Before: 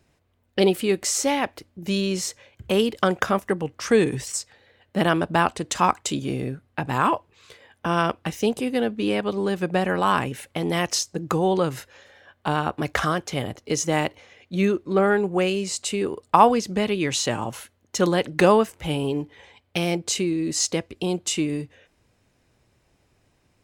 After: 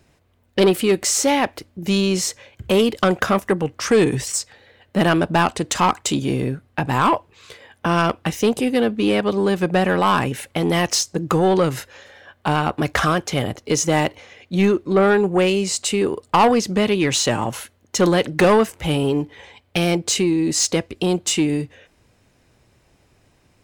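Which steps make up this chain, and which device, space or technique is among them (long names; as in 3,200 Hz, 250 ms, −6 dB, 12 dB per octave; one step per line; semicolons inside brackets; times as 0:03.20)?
saturation between pre-emphasis and de-emphasis (high-shelf EQ 6,000 Hz +6.5 dB; soft clipping −15 dBFS, distortion −12 dB; high-shelf EQ 6,000 Hz −6.5 dB)
level +6.5 dB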